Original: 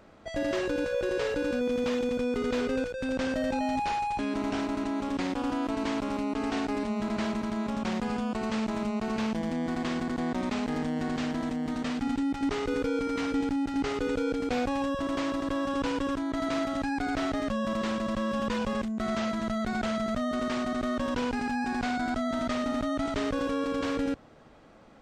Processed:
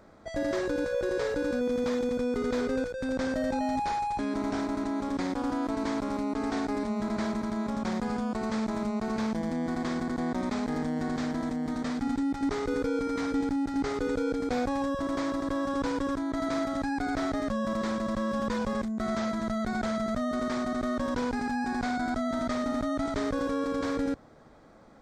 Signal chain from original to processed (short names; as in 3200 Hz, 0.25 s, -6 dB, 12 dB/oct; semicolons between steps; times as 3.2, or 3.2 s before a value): bell 2800 Hz -12 dB 0.39 oct